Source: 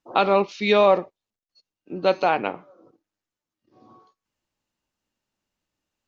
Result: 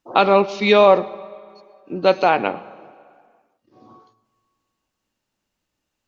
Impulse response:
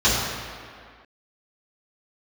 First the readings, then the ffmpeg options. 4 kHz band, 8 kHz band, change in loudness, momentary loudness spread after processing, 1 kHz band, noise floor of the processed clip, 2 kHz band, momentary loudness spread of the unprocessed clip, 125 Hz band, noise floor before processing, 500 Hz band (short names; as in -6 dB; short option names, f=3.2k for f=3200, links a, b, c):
+4.5 dB, n/a, +4.5 dB, 20 LU, +4.5 dB, -79 dBFS, +4.5 dB, 10 LU, +4.5 dB, under -85 dBFS, +4.5 dB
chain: -filter_complex "[0:a]asplit=2[a][b];[1:a]atrim=start_sample=2205,adelay=100[c];[b][c]afir=irnorm=-1:irlink=0,volume=-39.5dB[d];[a][d]amix=inputs=2:normalize=0,volume=4.5dB"